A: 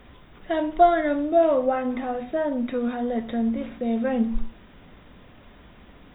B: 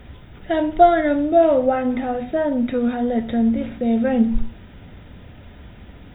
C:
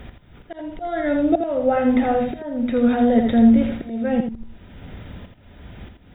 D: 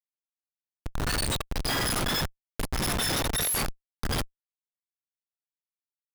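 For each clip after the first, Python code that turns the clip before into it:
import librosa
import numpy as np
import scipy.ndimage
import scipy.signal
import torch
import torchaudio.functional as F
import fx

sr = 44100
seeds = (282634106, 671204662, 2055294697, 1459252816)

y1 = fx.peak_eq(x, sr, hz=87.0, db=10.0, octaves=1.6)
y1 = fx.notch(y1, sr, hz=1100.0, q=5.6)
y1 = y1 * 10.0 ** (4.0 / 20.0)
y2 = fx.auto_swell(y1, sr, attack_ms=588.0)
y2 = y2 + 10.0 ** (-6.5 / 20.0) * np.pad(y2, (int(83 * sr / 1000.0), 0))[:len(y2)]
y2 = y2 * 10.0 ** (3.5 / 20.0)
y3 = fx.octave_mirror(y2, sr, pivot_hz=1600.0)
y3 = fx.schmitt(y3, sr, flips_db=-21.5)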